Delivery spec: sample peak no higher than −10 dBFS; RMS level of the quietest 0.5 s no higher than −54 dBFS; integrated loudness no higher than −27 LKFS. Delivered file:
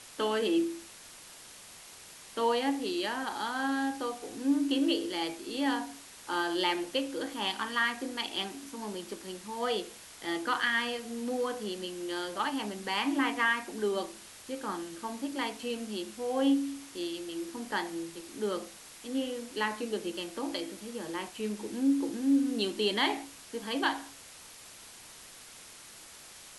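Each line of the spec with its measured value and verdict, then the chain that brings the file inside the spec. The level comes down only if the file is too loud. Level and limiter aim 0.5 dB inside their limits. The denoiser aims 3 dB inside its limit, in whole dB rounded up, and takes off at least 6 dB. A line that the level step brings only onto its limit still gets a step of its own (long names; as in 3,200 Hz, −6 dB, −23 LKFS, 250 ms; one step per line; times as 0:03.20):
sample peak −14.5 dBFS: in spec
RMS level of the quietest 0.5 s −51 dBFS: out of spec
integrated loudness −32.5 LKFS: in spec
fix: broadband denoise 6 dB, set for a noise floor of −51 dBFS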